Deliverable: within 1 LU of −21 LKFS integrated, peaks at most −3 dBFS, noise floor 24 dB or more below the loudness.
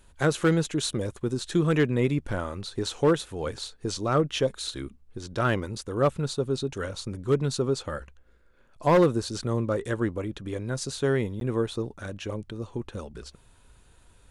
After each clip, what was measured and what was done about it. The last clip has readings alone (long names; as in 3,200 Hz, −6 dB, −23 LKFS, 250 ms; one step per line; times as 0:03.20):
share of clipped samples 0.4%; peaks flattened at −14.0 dBFS; number of dropouts 1; longest dropout 12 ms; integrated loudness −27.5 LKFS; sample peak −14.0 dBFS; target loudness −21.0 LKFS
→ clipped peaks rebuilt −14 dBFS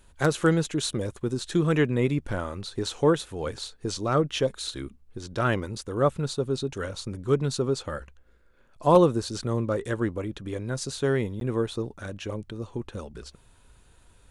share of clipped samples 0.0%; number of dropouts 1; longest dropout 12 ms
→ repair the gap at 0:11.40, 12 ms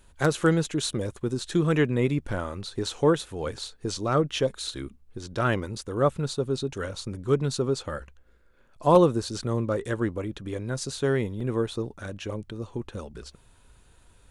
number of dropouts 0; integrated loudness −27.5 LKFS; sample peak −5.5 dBFS; target loudness −21.0 LKFS
→ level +6.5 dB
brickwall limiter −3 dBFS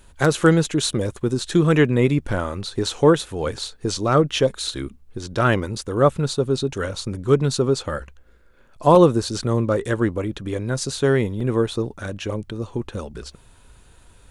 integrated loudness −21.0 LKFS; sample peak −3.0 dBFS; background noise floor −52 dBFS